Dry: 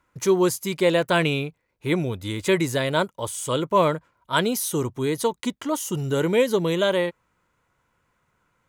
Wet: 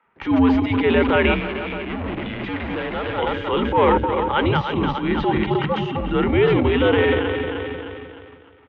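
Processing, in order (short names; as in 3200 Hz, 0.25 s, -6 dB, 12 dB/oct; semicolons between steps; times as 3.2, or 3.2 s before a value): regenerating reverse delay 0.154 s, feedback 68%, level -9 dB; transient shaper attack -9 dB, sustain +10 dB; in parallel at +2 dB: compressor, threshold -31 dBFS, peak gain reduction 15.5 dB; on the sum: sample leveller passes 1; 1.34–3.18 hard clip -22.5 dBFS, distortion -10 dB; bands offset in time highs, lows 50 ms, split 320 Hz; mistuned SSB -95 Hz 180–3100 Hz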